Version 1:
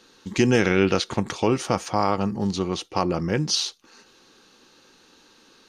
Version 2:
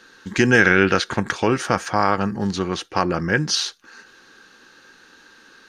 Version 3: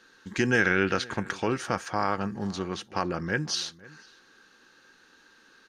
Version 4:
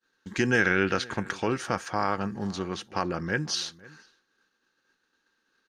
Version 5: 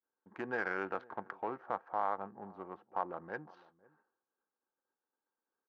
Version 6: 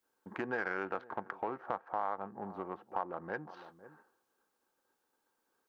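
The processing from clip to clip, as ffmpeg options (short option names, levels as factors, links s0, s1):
-af "equalizer=f=1600:w=2.7:g=13.5,volume=1.19"
-filter_complex "[0:a]asplit=2[s0][s1];[s1]adelay=507.3,volume=0.0891,highshelf=f=4000:g=-11.4[s2];[s0][s2]amix=inputs=2:normalize=0,volume=0.376"
-af "agate=range=0.0224:threshold=0.00447:ratio=3:detection=peak"
-af "adynamicsmooth=sensitivity=1:basefreq=850,bandpass=f=850:t=q:w=1.8:csg=0,volume=0.708"
-af "acompressor=threshold=0.00224:ratio=2,volume=3.76"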